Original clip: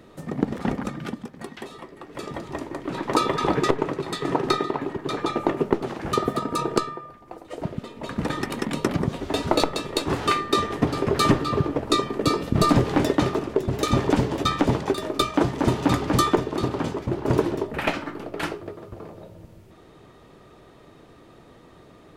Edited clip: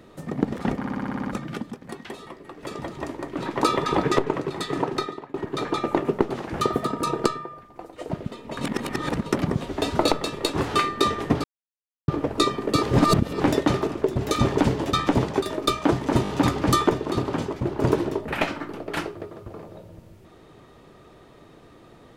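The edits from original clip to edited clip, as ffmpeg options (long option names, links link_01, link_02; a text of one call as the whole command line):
ffmpeg -i in.wav -filter_complex "[0:a]asplit=19[link_01][link_02][link_03][link_04][link_05][link_06][link_07][link_08][link_09][link_10][link_11][link_12][link_13][link_14][link_15][link_16][link_17][link_18][link_19];[link_01]atrim=end=0.842[link_20];[link_02]atrim=start=0.778:end=0.842[link_21];[link_03]atrim=start=0.778:end=0.842[link_22];[link_04]atrim=start=0.778:end=0.842[link_23];[link_05]atrim=start=0.778:end=0.842[link_24];[link_06]atrim=start=0.778:end=0.842[link_25];[link_07]atrim=start=0.778:end=0.842[link_26];[link_08]atrim=start=0.778:end=0.842[link_27];[link_09]atrim=start=0.778:end=4.86,asetpts=PTS-STARTPTS,afade=type=out:start_time=3.432:duration=0.65:silence=0.0841395[link_28];[link_10]atrim=start=4.86:end=8.132,asetpts=PTS-STARTPTS,afade=type=in:duration=0.004:curve=hsin:silence=0.0841395[link_29];[link_11]atrim=start=8.128:end=8.782,asetpts=PTS-STARTPTS,areverse[link_30];[link_12]atrim=start=8.778:end=10.96,asetpts=PTS-STARTPTS,afade=type=out:start_time=2.178:duration=0.004:curve=hsin[link_31];[link_13]atrim=start=10.96:end=11.6,asetpts=PTS-STARTPTS,volume=0[link_32];[link_14]atrim=start=11.6:end=12.352,asetpts=PTS-STARTPTS,afade=type=in:duration=0.004:curve=hsin[link_33];[link_15]atrim=start=12.348:end=12.922,asetpts=PTS-STARTPTS,areverse[link_34];[link_16]atrim=start=12.918:end=15.772[link_35];[link_17]atrim=start=15.748:end=15.772[link_36];[link_18]atrim=start=15.748:end=15.772[link_37];[link_19]atrim=start=15.748[link_38];[link_20][link_21]acrossfade=duration=0.004:curve1=hsin:curve2=hsin[link_39];[link_39][link_22]acrossfade=duration=0.004:curve1=hsin:curve2=hsin[link_40];[link_40][link_23]acrossfade=duration=0.004:curve1=hsin:curve2=hsin[link_41];[link_41][link_24]acrossfade=duration=0.004:curve1=hsin:curve2=hsin[link_42];[link_42][link_25]acrossfade=duration=0.004:curve1=hsin:curve2=hsin[link_43];[link_43][link_26]acrossfade=duration=0.004:curve1=hsin:curve2=hsin[link_44];[link_44][link_27]acrossfade=duration=0.004:curve1=hsin:curve2=hsin[link_45];[link_28][link_29]concat=n=2:v=0:a=1[link_46];[link_45][link_46]acrossfade=duration=0.004:curve1=hsin:curve2=hsin[link_47];[link_47][link_30]acrossfade=duration=0.004:curve1=hsin:curve2=hsin[link_48];[link_31][link_32][link_33]concat=n=3:v=0:a=1[link_49];[link_48][link_49]acrossfade=duration=0.004:curve1=hsin:curve2=hsin[link_50];[link_50][link_34]acrossfade=duration=0.004:curve1=hsin:curve2=hsin[link_51];[link_51][link_35]acrossfade=duration=0.004:curve1=hsin:curve2=hsin[link_52];[link_52][link_36]acrossfade=duration=0.004:curve1=hsin:curve2=hsin[link_53];[link_53][link_37]acrossfade=duration=0.004:curve1=hsin:curve2=hsin[link_54];[link_54][link_38]acrossfade=duration=0.004:curve1=hsin:curve2=hsin" out.wav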